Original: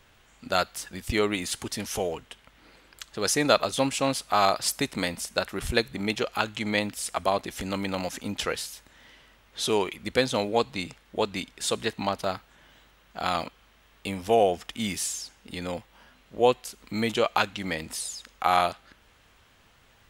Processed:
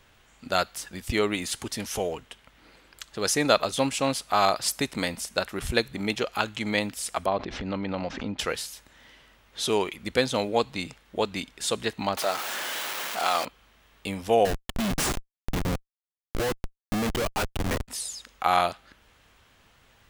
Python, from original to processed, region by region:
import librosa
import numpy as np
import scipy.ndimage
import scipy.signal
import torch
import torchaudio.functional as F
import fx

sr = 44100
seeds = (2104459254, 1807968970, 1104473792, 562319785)

y = fx.chain(x, sr, fx.lowpass(hz=4700.0, slope=24),
    fx.high_shelf(hz=2000.0, db=-9.5),
    fx.pre_swell(db_per_s=55.0), at=(7.26, 8.39))
y = fx.chain(y, sr, fx.zero_step(step_db=-25.5),
    fx.highpass(hz=450.0, slope=12), at=(12.17, 13.45))
y = fx.chain(y, sr, fx.transient(attack_db=8, sustain_db=-3),
    fx.schmitt(flips_db=-28.0),
    fx.upward_expand(threshold_db=-35.0, expansion=1.5), at=(14.45, 17.88))